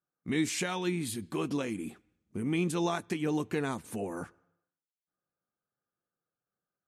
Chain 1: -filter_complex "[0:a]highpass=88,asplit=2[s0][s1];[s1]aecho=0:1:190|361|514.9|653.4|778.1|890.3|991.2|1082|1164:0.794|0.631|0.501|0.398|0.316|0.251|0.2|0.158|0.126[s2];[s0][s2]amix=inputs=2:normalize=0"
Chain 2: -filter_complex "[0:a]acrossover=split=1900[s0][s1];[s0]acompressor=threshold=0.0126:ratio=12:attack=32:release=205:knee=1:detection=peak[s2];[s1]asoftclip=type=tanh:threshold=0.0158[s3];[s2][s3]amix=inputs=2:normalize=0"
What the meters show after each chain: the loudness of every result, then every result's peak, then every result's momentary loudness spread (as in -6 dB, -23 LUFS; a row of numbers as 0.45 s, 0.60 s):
-29.5 LUFS, -39.5 LUFS; -14.0 dBFS, -25.5 dBFS; 11 LU, 8 LU